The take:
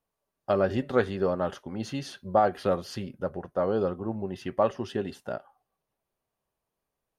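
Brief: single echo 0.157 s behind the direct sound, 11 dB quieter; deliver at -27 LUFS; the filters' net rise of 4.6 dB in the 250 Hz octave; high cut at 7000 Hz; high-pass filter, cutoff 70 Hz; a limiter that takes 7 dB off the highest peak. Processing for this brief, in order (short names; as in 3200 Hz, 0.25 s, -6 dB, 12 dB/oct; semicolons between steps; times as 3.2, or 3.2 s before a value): HPF 70 Hz; LPF 7000 Hz; bell 250 Hz +6 dB; limiter -15 dBFS; echo 0.157 s -11 dB; gain +2 dB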